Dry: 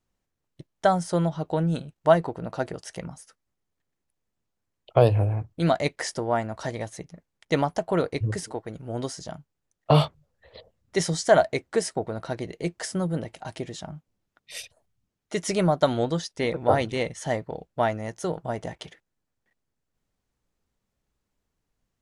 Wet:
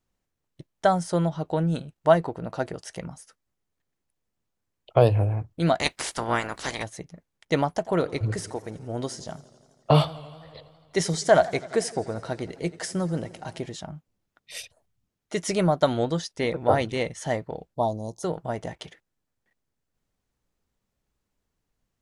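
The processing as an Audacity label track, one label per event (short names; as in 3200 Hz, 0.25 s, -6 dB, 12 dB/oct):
5.790000	6.820000	spectral limiter ceiling under each frame's peak by 23 dB
7.700000	13.720000	warbling echo 84 ms, feedback 75%, depth 102 cents, level -20 dB
17.740000	18.230000	elliptic band-stop 1000–3800 Hz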